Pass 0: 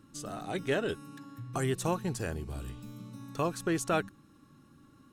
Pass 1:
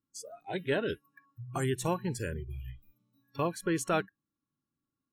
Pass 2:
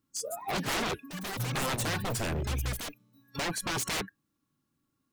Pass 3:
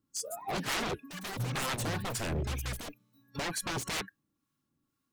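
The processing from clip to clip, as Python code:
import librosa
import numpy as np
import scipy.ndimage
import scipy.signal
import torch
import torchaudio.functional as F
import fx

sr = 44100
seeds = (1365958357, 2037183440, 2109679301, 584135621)

y1 = fx.noise_reduce_blind(x, sr, reduce_db=30)
y2 = 10.0 ** (-35.5 / 20.0) * (np.abs((y1 / 10.0 ** (-35.5 / 20.0) + 3.0) % 4.0 - 2.0) - 1.0)
y2 = fx.echo_pitch(y2, sr, ms=208, semitones=7, count=2, db_per_echo=-6.0)
y2 = F.gain(torch.from_numpy(y2), 9.0).numpy()
y3 = fx.harmonic_tremolo(y2, sr, hz=2.1, depth_pct=50, crossover_hz=920.0)
y3 = fx.doppler_dist(y3, sr, depth_ms=0.11)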